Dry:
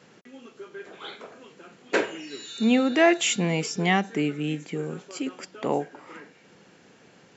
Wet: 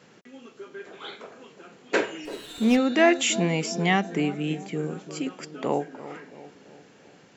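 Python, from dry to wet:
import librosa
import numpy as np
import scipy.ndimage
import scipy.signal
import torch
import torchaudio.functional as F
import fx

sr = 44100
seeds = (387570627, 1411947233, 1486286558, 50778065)

y = fx.echo_bbd(x, sr, ms=337, stages=2048, feedback_pct=54, wet_db=-14.0)
y = fx.running_max(y, sr, window=5, at=(2.25, 2.77))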